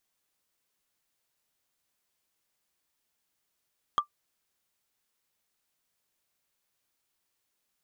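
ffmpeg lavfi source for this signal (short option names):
-f lavfi -i "aevalsrc='0.158*pow(10,-3*t/0.1)*sin(2*PI*1180*t)+0.0473*pow(10,-3*t/0.03)*sin(2*PI*3253.3*t)+0.0141*pow(10,-3*t/0.013)*sin(2*PI*6376.7*t)+0.00422*pow(10,-3*t/0.007)*sin(2*PI*10540.9*t)+0.00126*pow(10,-3*t/0.004)*sin(2*PI*15741.2*t)':d=0.45:s=44100"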